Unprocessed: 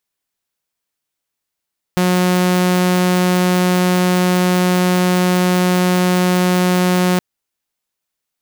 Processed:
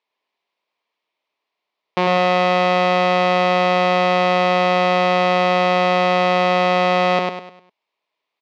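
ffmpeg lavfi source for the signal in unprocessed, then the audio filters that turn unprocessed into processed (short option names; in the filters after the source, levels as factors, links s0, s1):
-f lavfi -i "aevalsrc='0.335*(2*mod(181*t,1)-1)':d=5.22:s=44100"
-filter_complex "[0:a]asplit=2[s0][s1];[s1]aeval=exprs='0.0944*(abs(mod(val(0)/0.0944+3,4)-2)-1)':c=same,volume=0.355[s2];[s0][s2]amix=inputs=2:normalize=0,highpass=310,equalizer=f=420:t=q:w=4:g=4,equalizer=f=630:t=q:w=4:g=5,equalizer=f=1000:t=q:w=4:g=9,equalizer=f=1500:t=q:w=4:g=-8,equalizer=f=2300:t=q:w=4:g=5,lowpass=f=4100:w=0.5412,lowpass=f=4100:w=1.3066,aecho=1:1:101|202|303|404|505:0.668|0.254|0.0965|0.0367|0.0139"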